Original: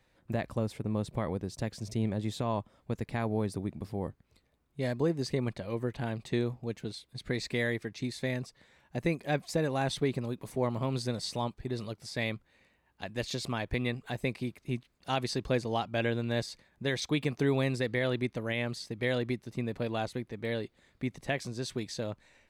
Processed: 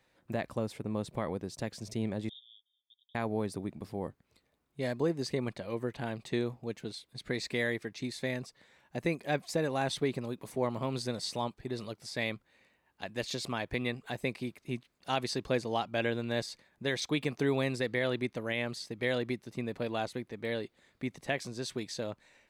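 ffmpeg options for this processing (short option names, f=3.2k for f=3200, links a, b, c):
-filter_complex "[0:a]asettb=1/sr,asplit=3[a][b][c];[a]atrim=end=2.294[d];[b]atrim=start=2.29:end=3.15,asetpts=PTS-STARTPTS,afade=t=in:d=0.004:c=qsin,afade=t=out:st=0.856:d=0.004:c=qsin,asuperpass=centerf=3400:order=12:qfactor=5.8[e];[c]atrim=start=3.146[f];[d][e]acrossfade=d=0.004:c1=hsin:c2=qsin[g];[g][f]acrossfade=d=0.004:c1=qsin:c2=hsin,lowshelf=f=110:g=-11.5"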